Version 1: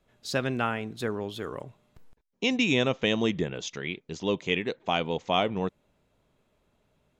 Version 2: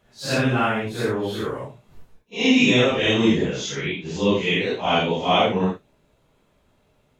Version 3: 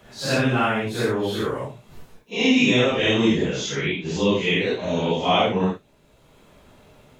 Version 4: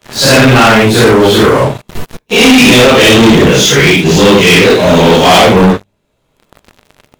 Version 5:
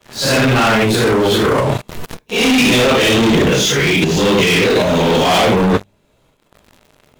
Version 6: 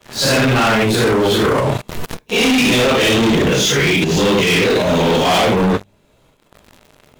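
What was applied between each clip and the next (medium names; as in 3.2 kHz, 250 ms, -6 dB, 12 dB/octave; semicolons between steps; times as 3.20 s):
phase randomisation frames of 200 ms; trim +7.5 dB
spectral replace 4.82–5.06 s, 650–5500 Hz; three bands compressed up and down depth 40%
de-hum 50.06 Hz, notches 4; waveshaping leveller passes 5; trim +5 dB
transient shaper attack -2 dB, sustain +12 dB; trim -8 dB
compression, threshold -15 dBFS, peak gain reduction 7 dB; trim +2.5 dB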